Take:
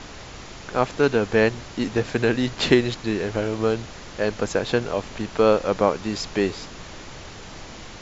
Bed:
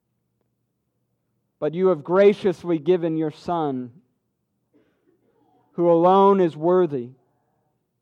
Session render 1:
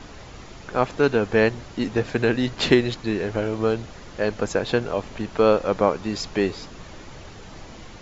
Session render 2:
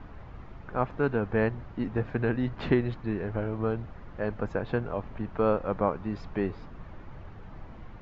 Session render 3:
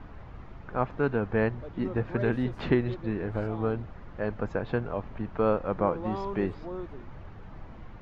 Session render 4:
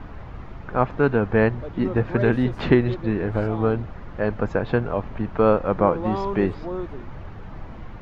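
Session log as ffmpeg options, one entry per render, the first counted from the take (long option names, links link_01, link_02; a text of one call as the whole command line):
ffmpeg -i in.wav -af "afftdn=noise_reduction=6:noise_floor=-40" out.wav
ffmpeg -i in.wav -af "lowpass=1200,equalizer=frequency=440:width_type=o:width=2.3:gain=-8.5" out.wav
ffmpeg -i in.wav -i bed.wav -filter_complex "[1:a]volume=-20dB[link_01];[0:a][link_01]amix=inputs=2:normalize=0" out.wav
ffmpeg -i in.wav -af "volume=7.5dB" out.wav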